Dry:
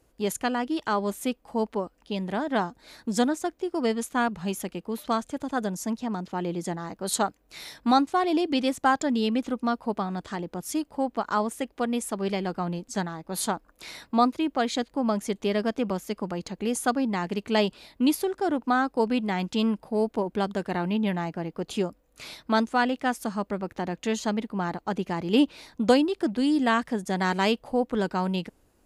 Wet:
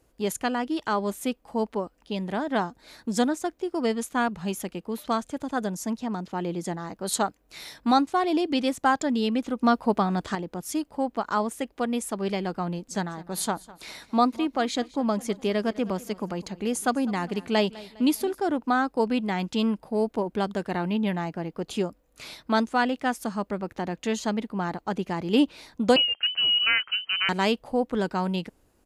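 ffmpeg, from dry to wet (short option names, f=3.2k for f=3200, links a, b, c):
-filter_complex "[0:a]asplit=3[a][b][c];[a]afade=t=out:st=12.9:d=0.02[d];[b]aecho=1:1:203|406|609:0.1|0.044|0.0194,afade=t=in:st=12.9:d=0.02,afade=t=out:st=18.38:d=0.02[e];[c]afade=t=in:st=18.38:d=0.02[f];[d][e][f]amix=inputs=3:normalize=0,asettb=1/sr,asplit=3[g][h][i];[g]atrim=end=25.964[j];[h]atrim=start=25.96:end=27.29,asetpts=PTS-STARTPTS,afade=t=in:d=0.004:c=qsin,afade=t=out:st=1.326:d=0.004:c=qsin,lowpass=f=2.7k:t=q:w=0.5098,lowpass=f=2.7k:t=q:w=0.6013,lowpass=f=2.7k:t=q:w=0.9,lowpass=f=2.7k:t=q:w=2.563,afreqshift=-3200[k];[i]atrim=start=27.286[l];[j][k]acrossfade=d=0.004:c1=hsin:c2=qsin[m];[m][l]acrossfade=d=0.004:c1=qsin:c2=hsin,asplit=3[n][o][p];[n]atrim=end=9.612[q];[o]atrim=start=9.608:end=10.352,asetpts=PTS-STARTPTS,volume=5.5dB[r];[p]atrim=start=10.348[s];[q][r]acrossfade=d=0.004:c1=hsin:c2=hsin[t];[t][s]acrossfade=d=0.004:c1=hsin:c2=hsin"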